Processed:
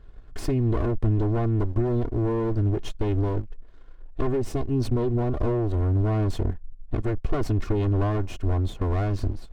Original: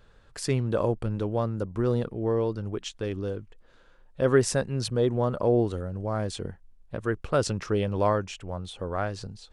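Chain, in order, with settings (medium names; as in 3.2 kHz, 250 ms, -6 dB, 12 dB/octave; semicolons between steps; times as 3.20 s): comb filter that takes the minimum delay 2.8 ms; in parallel at -11 dB: small samples zeroed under -41 dBFS; 4.28–5.51 s: on the sum: dynamic bell 1.5 kHz, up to -5 dB, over -40 dBFS, Q 1.3; compression 4:1, threshold -30 dBFS, peak gain reduction 13.5 dB; waveshaping leveller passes 1; saturation -22.5 dBFS, distortion -19 dB; tilt EQ -3 dB/octave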